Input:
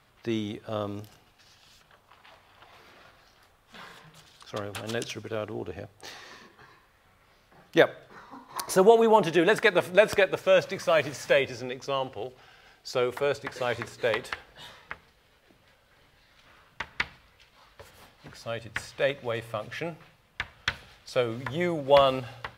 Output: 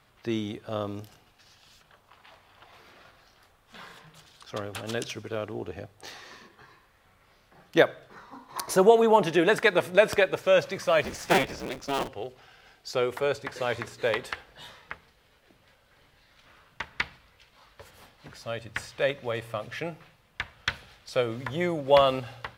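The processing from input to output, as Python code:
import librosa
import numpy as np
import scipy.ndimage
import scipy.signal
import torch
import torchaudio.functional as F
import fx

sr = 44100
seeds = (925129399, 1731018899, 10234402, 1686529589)

y = fx.cycle_switch(x, sr, every=3, mode='inverted', at=(11.04, 12.08))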